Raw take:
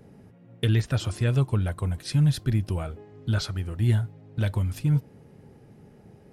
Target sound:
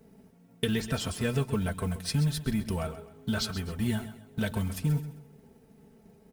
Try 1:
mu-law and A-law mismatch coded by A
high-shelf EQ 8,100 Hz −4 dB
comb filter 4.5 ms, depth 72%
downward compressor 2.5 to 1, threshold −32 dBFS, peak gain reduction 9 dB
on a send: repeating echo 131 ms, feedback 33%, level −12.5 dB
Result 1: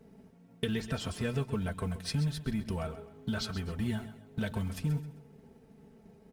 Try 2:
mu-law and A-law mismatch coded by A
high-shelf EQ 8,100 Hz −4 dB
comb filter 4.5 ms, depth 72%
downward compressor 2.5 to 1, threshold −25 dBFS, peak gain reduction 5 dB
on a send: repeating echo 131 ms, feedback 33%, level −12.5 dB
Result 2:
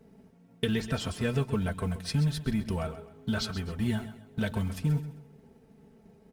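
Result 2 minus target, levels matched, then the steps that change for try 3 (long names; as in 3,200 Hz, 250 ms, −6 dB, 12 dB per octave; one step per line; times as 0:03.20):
8,000 Hz band −4.5 dB
change: high-shelf EQ 8,100 Hz +6.5 dB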